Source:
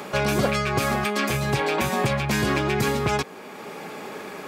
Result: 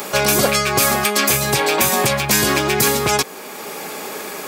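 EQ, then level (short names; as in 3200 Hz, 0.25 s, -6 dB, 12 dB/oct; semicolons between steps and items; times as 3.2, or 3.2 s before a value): tone controls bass -6 dB, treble +9 dB; high shelf 12000 Hz +10.5 dB; +6.0 dB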